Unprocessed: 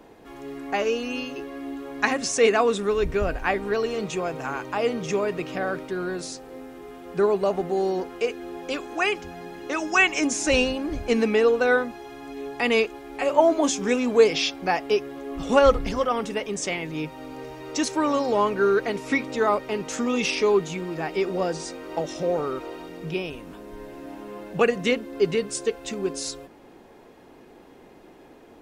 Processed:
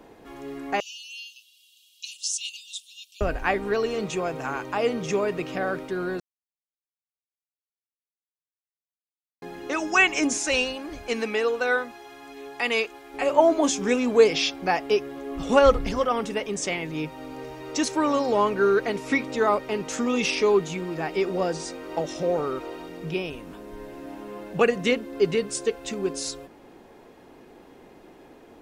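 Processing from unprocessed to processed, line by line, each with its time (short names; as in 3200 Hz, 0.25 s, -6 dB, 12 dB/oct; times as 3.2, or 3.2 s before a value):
0.8–3.21 steep high-pass 2800 Hz 96 dB/oct
6.2–9.42 mute
10.38–13.14 low shelf 450 Hz -11.5 dB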